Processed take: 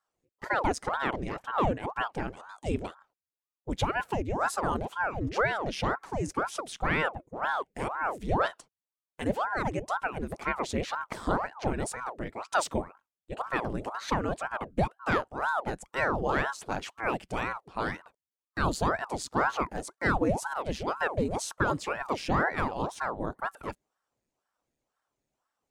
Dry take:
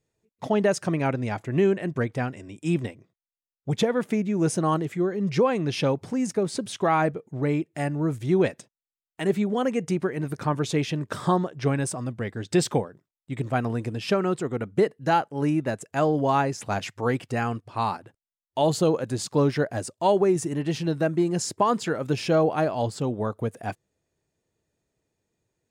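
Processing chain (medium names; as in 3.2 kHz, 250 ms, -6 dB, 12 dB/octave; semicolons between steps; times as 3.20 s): ring modulator with a swept carrier 660 Hz, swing 90%, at 2 Hz; trim -3 dB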